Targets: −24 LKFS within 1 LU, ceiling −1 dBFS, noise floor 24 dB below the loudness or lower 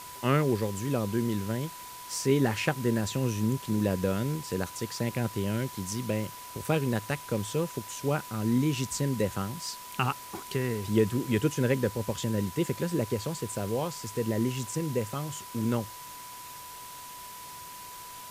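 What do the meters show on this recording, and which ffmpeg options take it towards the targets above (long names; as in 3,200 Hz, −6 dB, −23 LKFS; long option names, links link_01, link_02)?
interfering tone 990 Hz; level of the tone −44 dBFS; background noise floor −44 dBFS; target noise floor −54 dBFS; integrated loudness −30.0 LKFS; sample peak −12.0 dBFS; target loudness −24.0 LKFS
→ -af "bandreject=frequency=990:width=30"
-af "afftdn=noise_reduction=10:noise_floor=-44"
-af "volume=6dB"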